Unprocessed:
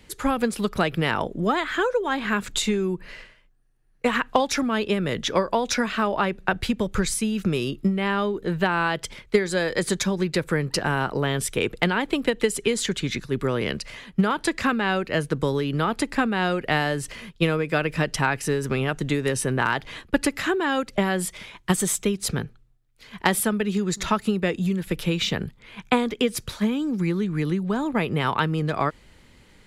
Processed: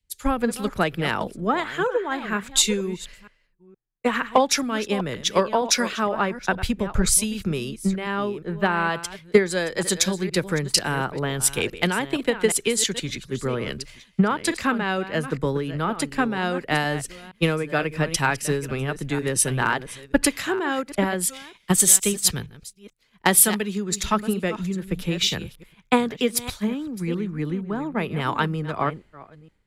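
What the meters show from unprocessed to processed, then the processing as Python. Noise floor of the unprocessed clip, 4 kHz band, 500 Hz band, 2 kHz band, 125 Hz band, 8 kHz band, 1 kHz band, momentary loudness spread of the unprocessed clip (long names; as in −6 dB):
−54 dBFS, +2.5 dB, 0.0 dB, −0.5 dB, −1.0 dB, +9.0 dB, +0.5 dB, 4 LU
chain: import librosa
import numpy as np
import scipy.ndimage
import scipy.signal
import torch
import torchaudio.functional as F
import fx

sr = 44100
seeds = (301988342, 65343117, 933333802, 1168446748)

y = fx.reverse_delay(x, sr, ms=468, wet_db=-10.5)
y = fx.high_shelf(y, sr, hz=5600.0, db=5.0)
y = fx.band_widen(y, sr, depth_pct=100)
y = y * 10.0 ** (-1.0 / 20.0)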